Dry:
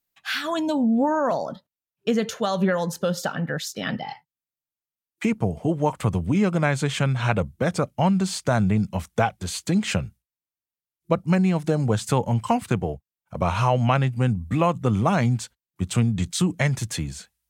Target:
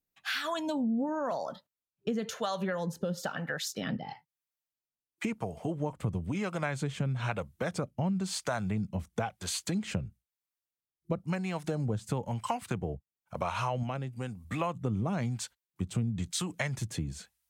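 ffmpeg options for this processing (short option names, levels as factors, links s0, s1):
-filter_complex "[0:a]acrossover=split=530[s0][s1];[s0]aeval=exprs='val(0)*(1-0.7/2+0.7/2*cos(2*PI*1*n/s))':c=same[s2];[s1]aeval=exprs='val(0)*(1-0.7/2-0.7/2*cos(2*PI*1*n/s))':c=same[s3];[s2][s3]amix=inputs=2:normalize=0,acompressor=threshold=0.0251:ratio=2.5,asettb=1/sr,asplit=3[s4][s5][s6];[s4]atrim=end=13.834[s7];[s5]atrim=start=13.83:end=14.45,asetpts=PTS-STARTPTS,afade=t=in:d=0.004:c=qsin,afade=t=out:st=0.616:d=0.004:c=qsin,bass=f=250:g=-7,treble=f=4000:g=5[s8];[s6]atrim=start=14.446[s9];[s7][s8]acrossfade=d=0.004:c1=hsin:c2=qsin[s10];[s10][s9]acrossfade=d=0.004:c1=qsin:c2=hsin"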